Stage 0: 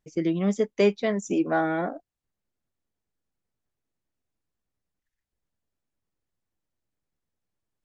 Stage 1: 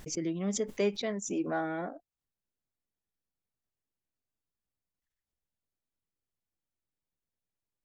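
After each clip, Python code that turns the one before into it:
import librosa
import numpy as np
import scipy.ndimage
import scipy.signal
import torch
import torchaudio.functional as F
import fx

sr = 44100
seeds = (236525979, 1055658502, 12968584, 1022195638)

y = fx.pre_swell(x, sr, db_per_s=82.0)
y = y * 10.0 ** (-8.5 / 20.0)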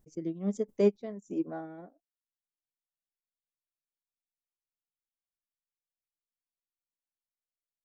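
y = fx.peak_eq(x, sr, hz=2600.0, db=-14.0, octaves=2.6)
y = fx.upward_expand(y, sr, threshold_db=-45.0, expansion=2.5)
y = y * 10.0 ** (8.0 / 20.0)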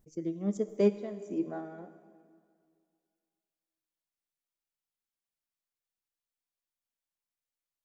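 y = fx.rev_plate(x, sr, seeds[0], rt60_s=2.2, hf_ratio=0.95, predelay_ms=0, drr_db=11.0)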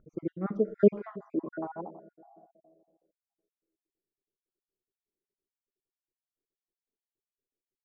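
y = fx.spec_dropout(x, sr, seeds[1], share_pct=54)
y = fx.filter_sweep_lowpass(y, sr, from_hz=1400.0, to_hz=390.0, start_s=0.92, end_s=3.84, q=6.8)
y = y * 10.0 ** (4.5 / 20.0)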